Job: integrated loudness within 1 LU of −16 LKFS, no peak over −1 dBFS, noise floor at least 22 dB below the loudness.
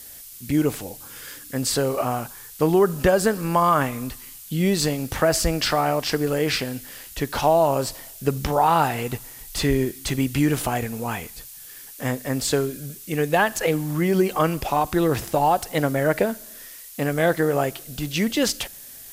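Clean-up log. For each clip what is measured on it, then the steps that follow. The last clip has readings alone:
background noise floor −42 dBFS; target noise floor −45 dBFS; integrated loudness −22.5 LKFS; sample peak −6.0 dBFS; target loudness −16.0 LKFS
→ broadband denoise 6 dB, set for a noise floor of −42 dBFS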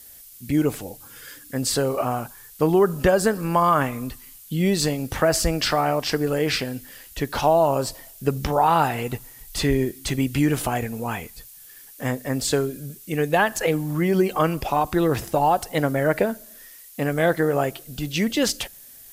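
background noise floor −46 dBFS; integrated loudness −23.0 LKFS; sample peak −6.0 dBFS; target loudness −16.0 LKFS
→ level +7 dB
brickwall limiter −1 dBFS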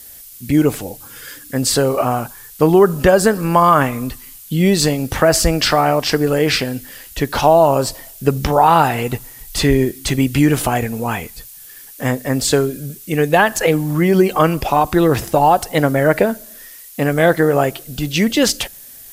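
integrated loudness −16.0 LKFS; sample peak −1.0 dBFS; background noise floor −39 dBFS

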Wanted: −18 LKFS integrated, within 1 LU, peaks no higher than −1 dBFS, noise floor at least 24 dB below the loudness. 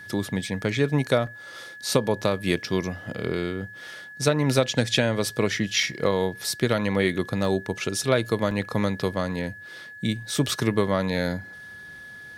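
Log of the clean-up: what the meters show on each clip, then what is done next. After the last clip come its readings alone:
number of dropouts 5; longest dropout 2.4 ms; interfering tone 1,700 Hz; level of the tone −40 dBFS; integrated loudness −25.5 LKFS; sample peak −4.5 dBFS; target loudness −18.0 LKFS
→ repair the gap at 0:01.27/0:02.22/0:05.83/0:07.45/0:08.51, 2.4 ms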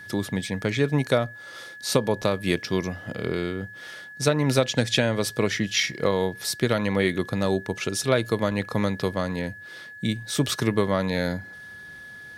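number of dropouts 0; interfering tone 1,700 Hz; level of the tone −40 dBFS
→ notch filter 1,700 Hz, Q 30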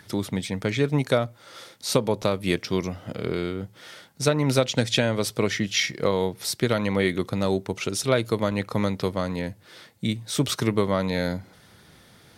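interfering tone none found; integrated loudness −25.5 LKFS; sample peak −4.0 dBFS; target loudness −18.0 LKFS
→ level +7.5 dB
brickwall limiter −1 dBFS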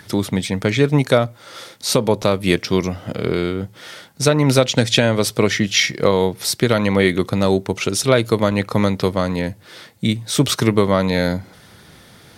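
integrated loudness −18.0 LKFS; sample peak −1.0 dBFS; background noise floor −46 dBFS

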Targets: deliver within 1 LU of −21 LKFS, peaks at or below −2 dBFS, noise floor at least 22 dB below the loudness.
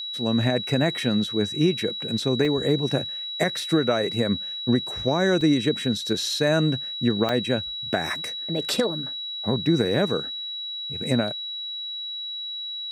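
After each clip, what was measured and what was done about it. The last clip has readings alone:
number of dropouts 4; longest dropout 2.2 ms; interfering tone 3,900 Hz; level of the tone −30 dBFS; integrated loudness −24.5 LKFS; sample peak −8.0 dBFS; target loudness −21.0 LKFS
→ repair the gap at 0:02.45/0:05.41/0:07.29/0:11.28, 2.2 ms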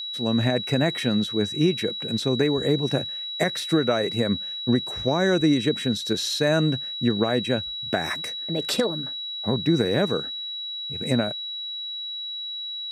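number of dropouts 0; interfering tone 3,900 Hz; level of the tone −30 dBFS
→ notch filter 3,900 Hz, Q 30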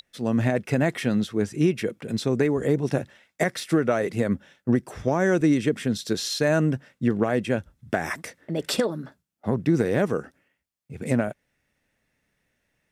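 interfering tone none found; integrated loudness −25.0 LKFS; sample peak −8.5 dBFS; target loudness −21.0 LKFS
→ level +4 dB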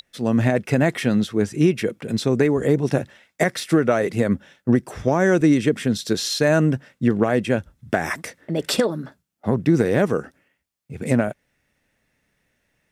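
integrated loudness −21.0 LKFS; sample peak −4.5 dBFS; background noise floor −72 dBFS

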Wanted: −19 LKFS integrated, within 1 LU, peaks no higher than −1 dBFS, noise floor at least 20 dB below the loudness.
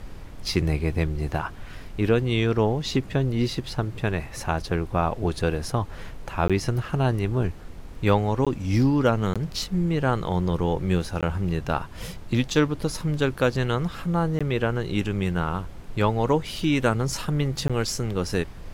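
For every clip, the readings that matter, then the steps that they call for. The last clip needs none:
number of dropouts 6; longest dropout 16 ms; background noise floor −39 dBFS; target noise floor −46 dBFS; integrated loudness −25.5 LKFS; sample peak −8.0 dBFS; target loudness −19.0 LKFS
→ repair the gap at 0:06.48/0:08.45/0:09.34/0:11.21/0:14.39/0:17.68, 16 ms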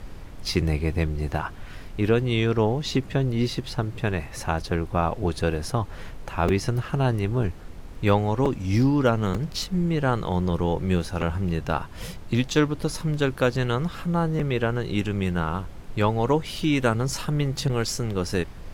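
number of dropouts 0; background noise floor −39 dBFS; target noise floor −46 dBFS
→ noise reduction from a noise print 7 dB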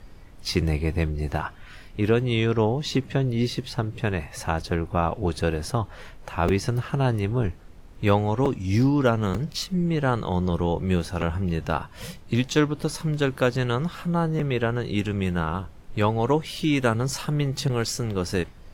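background noise floor −45 dBFS; target noise floor −46 dBFS
→ noise reduction from a noise print 6 dB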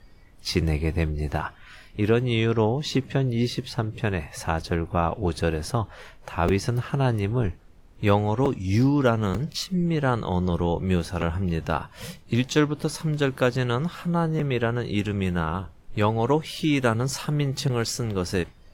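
background noise floor −50 dBFS; integrated loudness −25.5 LKFS; sample peak −8.0 dBFS; target loudness −19.0 LKFS
→ level +6.5 dB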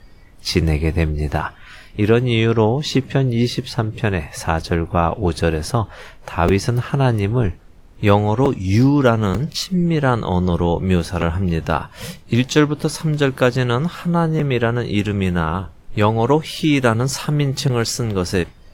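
integrated loudness −19.0 LKFS; sample peak −1.5 dBFS; background noise floor −44 dBFS

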